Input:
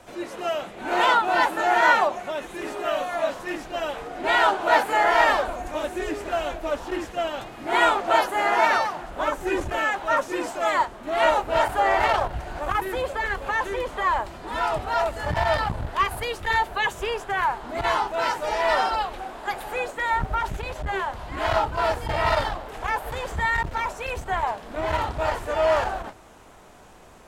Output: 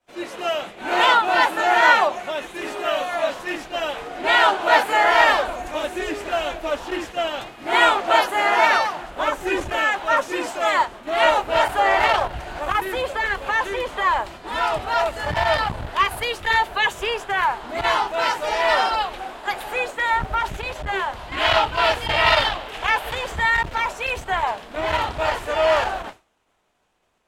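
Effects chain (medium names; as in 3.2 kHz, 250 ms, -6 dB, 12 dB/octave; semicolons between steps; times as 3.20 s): bass shelf 230 Hz -4.5 dB; expander -36 dBFS; peaking EQ 3 kHz +4.5 dB 1.3 oct, from 21.32 s +12.5 dB, from 23.15 s +6 dB; trim +2.5 dB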